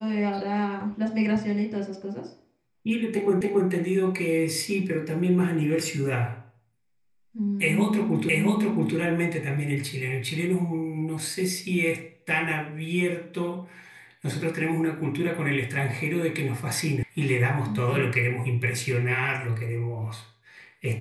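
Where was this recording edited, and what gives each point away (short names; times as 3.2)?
3.41 repeat of the last 0.28 s
8.29 repeat of the last 0.67 s
17.03 sound cut off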